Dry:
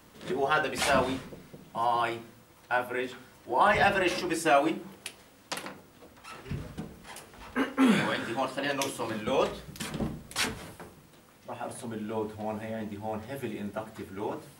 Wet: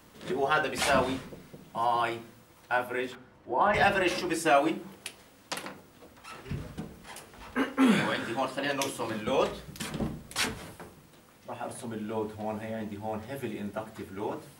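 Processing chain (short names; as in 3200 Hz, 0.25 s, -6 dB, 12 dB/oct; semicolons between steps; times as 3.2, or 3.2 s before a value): 3.15–3.74 LPF 1200 Hz 6 dB/oct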